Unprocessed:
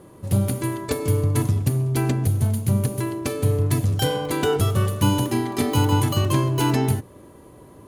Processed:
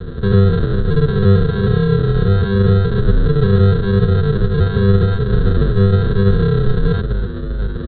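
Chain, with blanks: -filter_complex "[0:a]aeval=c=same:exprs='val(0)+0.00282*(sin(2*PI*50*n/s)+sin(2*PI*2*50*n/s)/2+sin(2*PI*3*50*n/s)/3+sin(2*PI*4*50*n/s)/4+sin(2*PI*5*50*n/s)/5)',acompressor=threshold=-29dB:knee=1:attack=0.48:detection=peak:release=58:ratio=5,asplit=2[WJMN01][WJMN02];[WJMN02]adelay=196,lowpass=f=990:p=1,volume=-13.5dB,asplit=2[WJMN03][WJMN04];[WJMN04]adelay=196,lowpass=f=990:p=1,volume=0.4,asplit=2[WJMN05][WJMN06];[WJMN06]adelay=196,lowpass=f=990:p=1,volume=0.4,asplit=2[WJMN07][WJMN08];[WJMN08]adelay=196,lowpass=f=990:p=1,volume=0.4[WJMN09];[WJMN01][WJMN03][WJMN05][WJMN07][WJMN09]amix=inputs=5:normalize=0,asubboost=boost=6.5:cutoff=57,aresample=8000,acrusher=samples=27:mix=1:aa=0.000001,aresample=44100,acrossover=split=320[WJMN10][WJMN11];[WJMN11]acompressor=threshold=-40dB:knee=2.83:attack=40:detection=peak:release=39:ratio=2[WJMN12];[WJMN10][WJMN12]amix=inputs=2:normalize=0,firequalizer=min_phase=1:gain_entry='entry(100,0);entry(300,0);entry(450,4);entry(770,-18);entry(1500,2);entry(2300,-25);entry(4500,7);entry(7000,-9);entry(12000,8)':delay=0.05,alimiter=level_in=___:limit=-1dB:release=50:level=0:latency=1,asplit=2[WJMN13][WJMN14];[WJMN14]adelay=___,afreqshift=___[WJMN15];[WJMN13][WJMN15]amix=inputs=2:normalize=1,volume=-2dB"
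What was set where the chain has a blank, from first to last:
26.5dB, 8.1, -2.2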